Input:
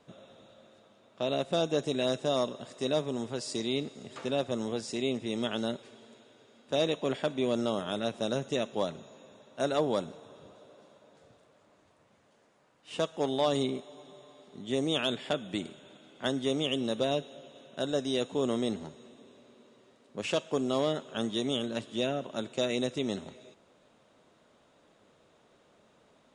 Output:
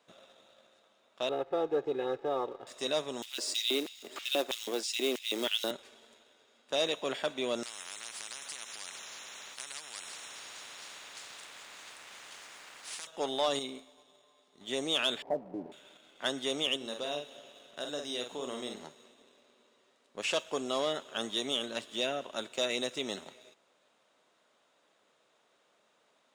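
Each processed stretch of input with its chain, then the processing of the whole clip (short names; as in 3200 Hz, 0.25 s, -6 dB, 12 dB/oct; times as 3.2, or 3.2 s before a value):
1.29–2.67 LPF 1100 Hz + comb 2.4 ms, depth 96%
3.22–5.71 short-mantissa float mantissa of 2-bit + LFO high-pass square 3.1 Hz 310–2900 Hz
7.63–13.07 compressor 3:1, threshold -38 dBFS + spectral compressor 10:1
13.59–14.61 high shelf 6700 Hz +5 dB + resonator 87 Hz, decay 0.54 s
15.22–15.72 zero-crossing step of -42 dBFS + steep low-pass 970 Hz 72 dB/oct + comb 7 ms, depth 36%
16.76–18.82 compressor 1.5:1, threshold -41 dBFS + doubler 48 ms -5.5 dB
whole clip: HPF 980 Hz 6 dB/oct; sample leveller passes 1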